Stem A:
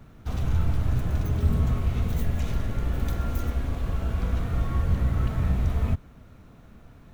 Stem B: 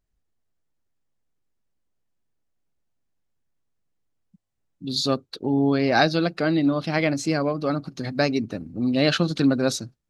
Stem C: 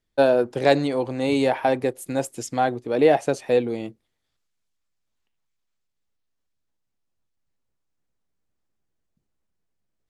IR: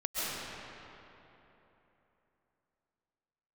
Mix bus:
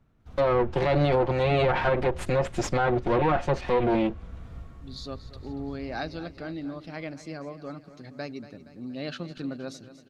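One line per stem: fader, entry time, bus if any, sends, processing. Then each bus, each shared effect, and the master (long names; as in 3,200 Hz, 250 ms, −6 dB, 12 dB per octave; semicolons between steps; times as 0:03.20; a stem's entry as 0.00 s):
−16.0 dB, 0.00 s, no send, echo send −8.5 dB, automatic ducking −8 dB, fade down 0.25 s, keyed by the second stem
−14.5 dB, 0.00 s, no send, echo send −14.5 dB, no processing
+1.0 dB, 0.20 s, no send, no echo send, lower of the sound and its delayed copy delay 5.6 ms; automatic gain control gain up to 15 dB; brickwall limiter −10.5 dBFS, peak gain reduction 9.5 dB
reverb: not used
echo: repeating echo 235 ms, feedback 56%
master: treble cut that deepens with the level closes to 2,500 Hz, closed at −14.5 dBFS; high-shelf EQ 7,100 Hz −8 dB; brickwall limiter −15 dBFS, peak gain reduction 6 dB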